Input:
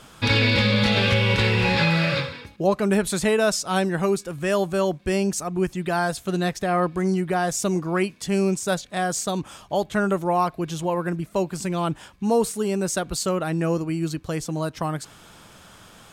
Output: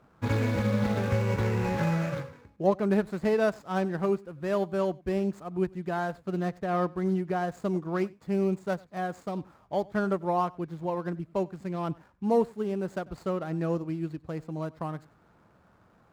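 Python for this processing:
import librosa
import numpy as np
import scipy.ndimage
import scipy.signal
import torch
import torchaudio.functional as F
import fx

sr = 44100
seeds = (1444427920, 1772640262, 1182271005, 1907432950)

y = scipy.signal.medfilt(x, 15)
y = scipy.signal.sosfilt(scipy.signal.butter(2, 42.0, 'highpass', fs=sr, output='sos'), y)
y = fx.high_shelf(y, sr, hz=3000.0, db=-8.0)
y = y + 10.0 ** (-19.5 / 20.0) * np.pad(y, (int(95 * sr / 1000.0), 0))[:len(y)]
y = fx.upward_expand(y, sr, threshold_db=-32.0, expansion=1.5)
y = F.gain(torch.from_numpy(y), -2.5).numpy()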